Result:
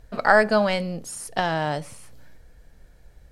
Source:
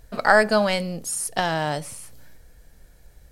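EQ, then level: low-pass 3.5 kHz 6 dB/octave; 0.0 dB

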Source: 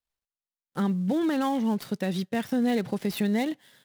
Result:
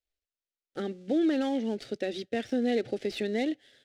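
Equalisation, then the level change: distance through air 94 m; static phaser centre 420 Hz, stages 4; +2.0 dB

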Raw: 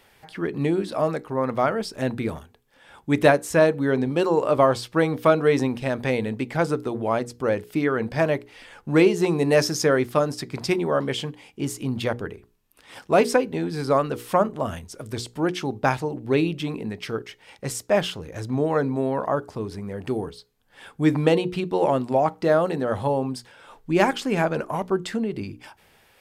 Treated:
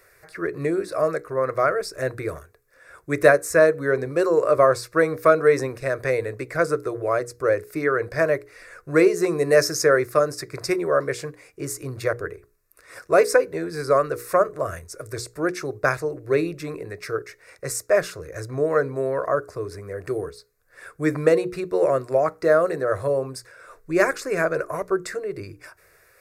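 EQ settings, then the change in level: bass shelf 380 Hz -4.5 dB; static phaser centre 850 Hz, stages 6; +5.0 dB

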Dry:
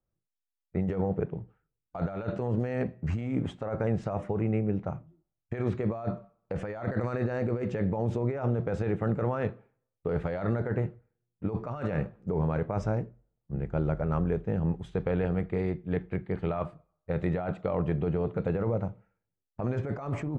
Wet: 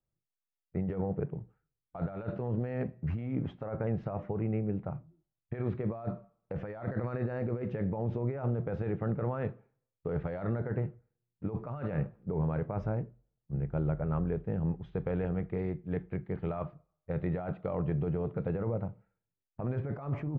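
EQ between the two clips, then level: distance through air 270 m; peaking EQ 140 Hz +6 dB 0.24 oct; -4.0 dB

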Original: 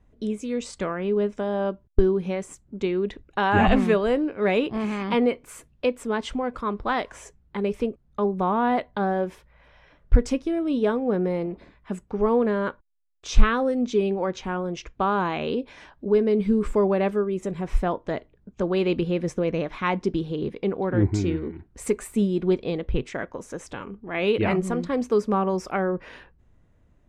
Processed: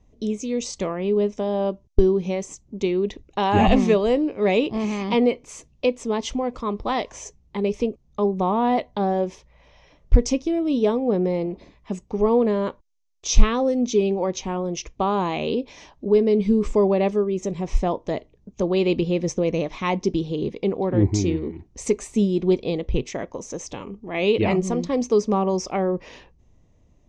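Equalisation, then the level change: resonant low-pass 6.2 kHz, resonance Q 4.6; tone controls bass -1 dB, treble -4 dB; peaking EQ 1.5 kHz -14.5 dB 0.5 oct; +3.0 dB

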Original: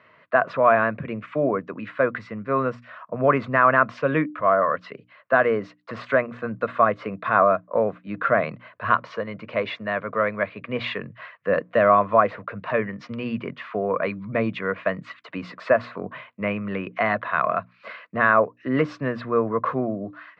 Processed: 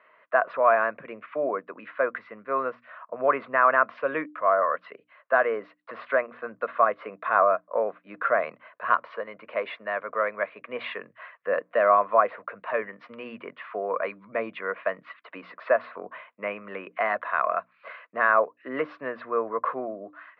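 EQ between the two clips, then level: high-pass 520 Hz 12 dB/octave; distance through air 390 m; 0.0 dB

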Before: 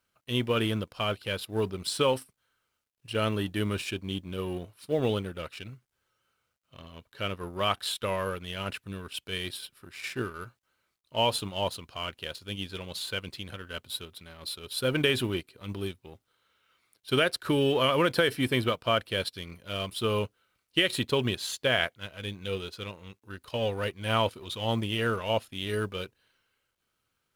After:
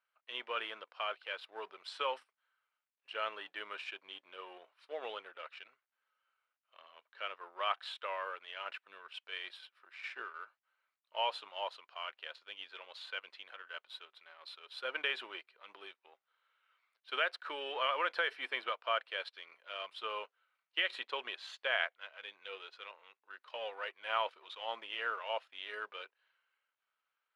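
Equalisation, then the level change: Bessel high-pass 940 Hz, order 4; low-pass 2.3 kHz 12 dB/octave; -2.5 dB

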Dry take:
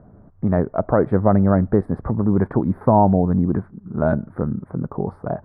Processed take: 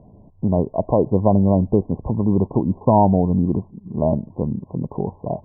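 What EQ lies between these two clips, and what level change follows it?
brick-wall FIR low-pass 1.1 kHz; 0.0 dB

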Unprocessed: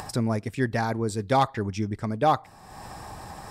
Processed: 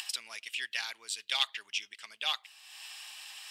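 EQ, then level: resonant high-pass 2.9 kHz, resonance Q 6.1; 0.0 dB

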